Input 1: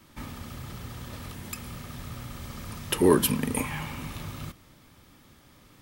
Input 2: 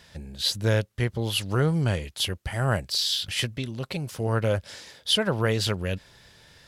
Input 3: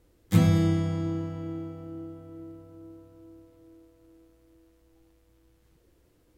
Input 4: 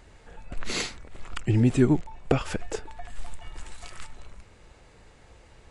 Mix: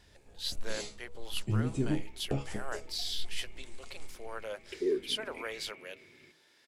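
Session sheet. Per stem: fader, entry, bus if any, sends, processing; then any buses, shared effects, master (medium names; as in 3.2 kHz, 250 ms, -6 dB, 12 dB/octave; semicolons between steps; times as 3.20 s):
-5.0 dB, 1.80 s, no send, two resonant band-passes 930 Hz, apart 2.5 oct
-11.0 dB, 0.00 s, no send, Bessel high-pass 550 Hz, order 4
mute
+1.0 dB, 0.00 s, no send, peaking EQ 1.6 kHz -12.5 dB 1.6 oct; chord resonator C#2 fifth, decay 0.24 s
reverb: none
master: de-hum 160.7 Hz, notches 8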